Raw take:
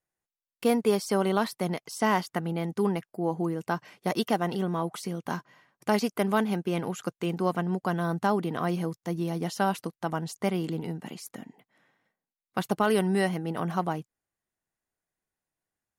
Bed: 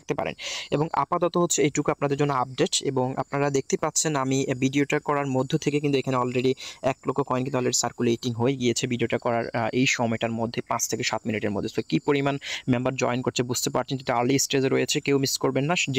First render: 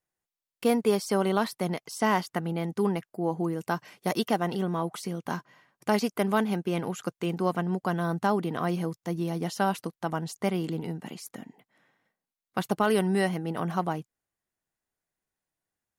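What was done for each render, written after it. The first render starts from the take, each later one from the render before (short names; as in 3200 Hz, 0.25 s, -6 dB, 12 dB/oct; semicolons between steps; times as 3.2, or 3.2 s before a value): 3.53–4.18 high shelf 5800 Hz +6 dB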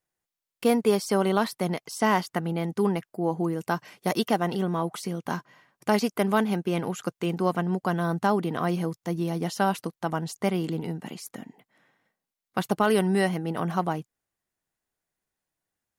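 gain +2 dB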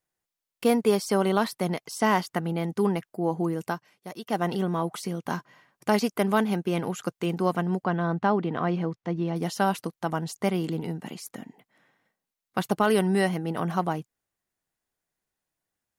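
3.67–4.39 dip -13.5 dB, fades 0.13 s; 7.84–9.36 LPF 3100 Hz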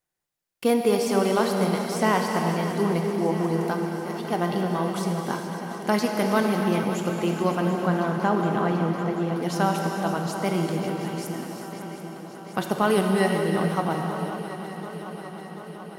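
swung echo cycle 0.737 s, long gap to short 3:1, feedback 67%, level -12.5 dB; non-linear reverb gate 0.48 s flat, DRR 2 dB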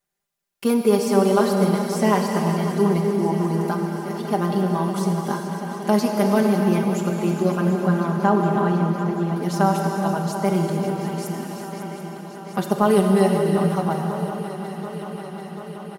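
dynamic EQ 2600 Hz, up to -5 dB, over -43 dBFS, Q 0.88; comb 5 ms, depth 95%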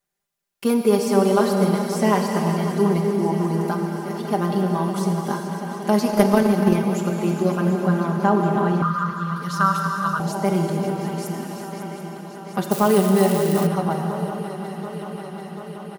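6.08–6.84 transient shaper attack +8 dB, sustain -3 dB; 8.82–10.2 EQ curve 150 Hz 0 dB, 330 Hz -17 dB, 520 Hz -7 dB, 780 Hz -16 dB, 1200 Hz +15 dB, 2200 Hz -5 dB, 3800 Hz +3 dB, 7100 Hz -2 dB; 12.71–13.67 switching spikes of -19 dBFS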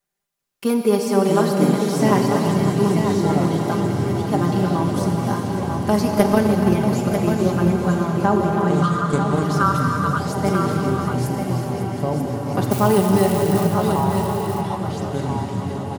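on a send: echo 0.942 s -7 dB; on the sum: echoes that change speed 0.371 s, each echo -6 st, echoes 2, each echo -6 dB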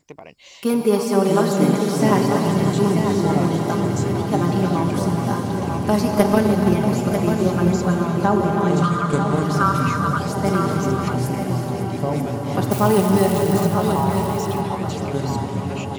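add bed -13 dB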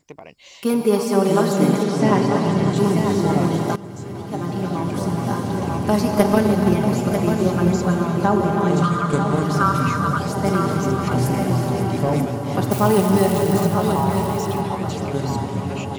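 1.83–2.76 air absorption 55 m; 3.76–5.54 fade in, from -16.5 dB; 11.11–12.25 sample leveller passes 1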